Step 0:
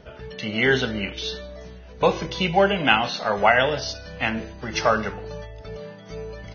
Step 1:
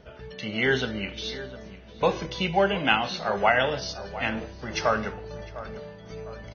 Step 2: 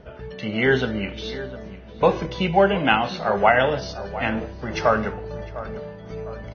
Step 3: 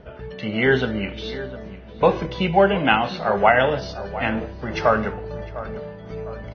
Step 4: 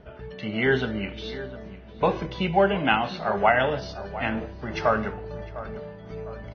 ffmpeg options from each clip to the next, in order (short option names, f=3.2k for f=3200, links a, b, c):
-filter_complex "[0:a]asplit=2[a][b];[b]adelay=704,lowpass=f=1.6k:p=1,volume=-14dB,asplit=2[c][d];[d]adelay=704,lowpass=f=1.6k:p=1,volume=0.5,asplit=2[e][f];[f]adelay=704,lowpass=f=1.6k:p=1,volume=0.5,asplit=2[g][h];[h]adelay=704,lowpass=f=1.6k:p=1,volume=0.5,asplit=2[i][j];[j]adelay=704,lowpass=f=1.6k:p=1,volume=0.5[k];[a][c][e][g][i][k]amix=inputs=6:normalize=0,volume=-4dB"
-af "highshelf=f=3k:g=-12,volume=6dB"
-af "lowpass=5k,volume=1dB"
-af "bandreject=f=510:w=12,volume=-4dB"